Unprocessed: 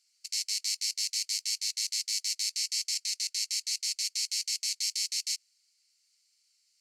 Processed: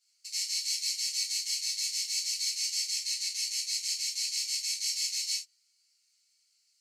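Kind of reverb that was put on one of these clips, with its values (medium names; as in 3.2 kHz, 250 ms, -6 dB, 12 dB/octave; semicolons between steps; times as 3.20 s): gated-style reverb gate 110 ms falling, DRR -7.5 dB; trim -8.5 dB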